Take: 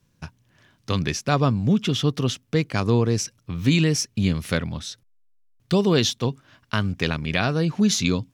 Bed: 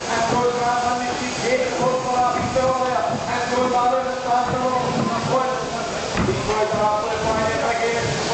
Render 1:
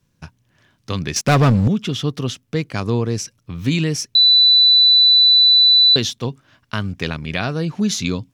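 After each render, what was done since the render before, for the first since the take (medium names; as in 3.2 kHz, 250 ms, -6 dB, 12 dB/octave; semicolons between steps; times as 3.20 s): 1.16–1.68 s: waveshaping leveller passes 3; 4.15–5.96 s: bleep 3.98 kHz -8 dBFS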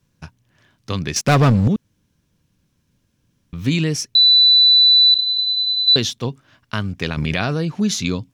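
1.76–3.53 s: room tone; 5.14–5.88 s: LPC vocoder at 8 kHz pitch kept; 7.17–7.61 s: level flattener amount 100%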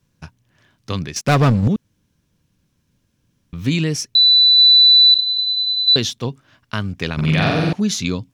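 1.06–1.63 s: upward expansion, over -24 dBFS; 4.58–5.20 s: treble shelf 7.4 kHz +8.5 dB; 7.14–7.73 s: flutter echo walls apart 7.7 m, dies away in 1.3 s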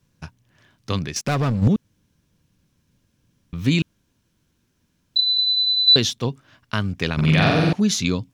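0.98–1.62 s: compression 3:1, threshold -21 dBFS; 3.82–5.16 s: room tone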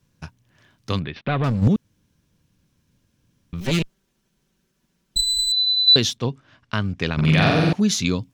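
1.00–1.44 s: elliptic low-pass 3.7 kHz, stop band 50 dB; 3.60–5.52 s: comb filter that takes the minimum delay 5.2 ms; 6.17–7.25 s: distance through air 62 m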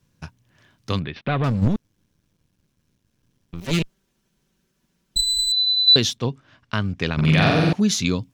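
1.65–3.73 s: partial rectifier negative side -12 dB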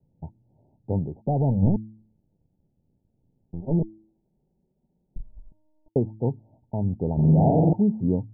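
Chebyshev low-pass 910 Hz, order 10; de-hum 108.8 Hz, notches 3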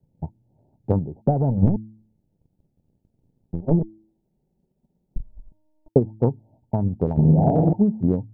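transient shaper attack +8 dB, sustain 0 dB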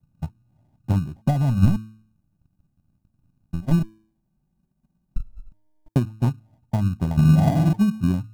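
static phaser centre 1.1 kHz, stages 4; in parallel at -9 dB: sample-and-hold 33×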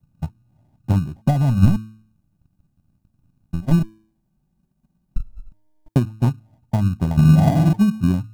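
trim +3 dB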